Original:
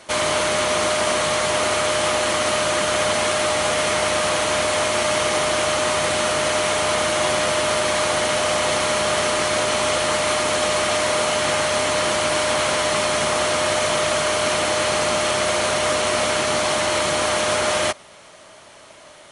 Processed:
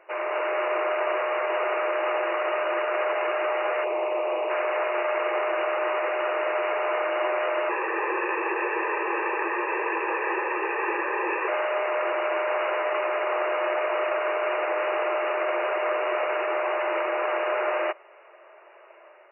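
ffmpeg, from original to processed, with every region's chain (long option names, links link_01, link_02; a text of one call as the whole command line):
ffmpeg -i in.wav -filter_complex "[0:a]asettb=1/sr,asplit=3[link_01][link_02][link_03];[link_01]atrim=end=3.844[link_04];[link_02]atrim=start=3.84:end=4.5,asetpts=PTS-STARTPTS,afade=type=in:duration=0.004:curve=qsin,afade=type=out:start_time=0.656:duration=0.004:curve=qsin,asuperstop=centerf=1600:order=4:qfactor=1.3,lowshelf=frequency=280:gain=11,volume=16.5dB,asoftclip=hard,volume=-16.5dB[link_05];[link_03]atrim=start=4.496[link_06];[link_04][link_05]acrossfade=duration=0.004:curve1=hsin:curve2=qsin[link_07];[link_07][link_06]acrossfade=duration=0.004:curve1=qsin:curve2=hsin,asettb=1/sr,asplit=3[link_08][link_09][link_10];[link_08]atrim=end=7.694[link_11];[link_09]atrim=start=7.69:end=11.48,asetpts=PTS-STARTPTS,afade=type=in:duration=0.004:curve=qsin,afade=type=out:start_time=3.786:duration=0.004:curve=qsin,aecho=1:1:1.4:0.85,atrim=end_sample=167139,afreqshift=-390[link_12];[link_10]atrim=start=11.476[link_13];[link_11][link_12]acrossfade=duration=0.004:curve1=hsin:curve2=qsin[link_14];[link_14][link_13]acrossfade=duration=0.004:curve1=qsin:curve2=hsin,afftfilt=real='re*between(b*sr/4096,330,2900)':imag='im*between(b*sr/4096,330,2900)':win_size=4096:overlap=0.75,aemphasis=mode=reproduction:type=75kf,dynaudnorm=framelen=160:gausssize=5:maxgain=3.5dB,volume=-7dB" out.wav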